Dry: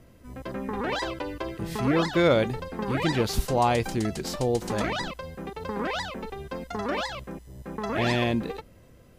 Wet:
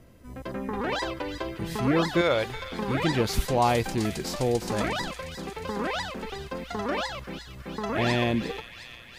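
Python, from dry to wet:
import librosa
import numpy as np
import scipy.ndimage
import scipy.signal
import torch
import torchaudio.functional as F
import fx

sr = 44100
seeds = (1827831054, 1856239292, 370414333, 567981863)

p1 = fx.peak_eq(x, sr, hz=200.0, db=-13.0, octaves=1.7, at=(2.21, 2.71))
y = p1 + fx.echo_wet_highpass(p1, sr, ms=357, feedback_pct=69, hz=2000.0, wet_db=-9, dry=0)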